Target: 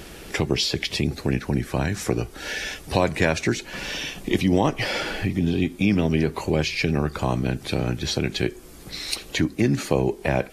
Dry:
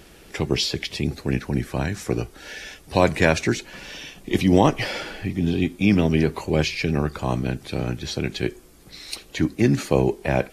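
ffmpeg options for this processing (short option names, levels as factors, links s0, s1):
-af "acompressor=threshold=0.0251:ratio=2,volume=2.37"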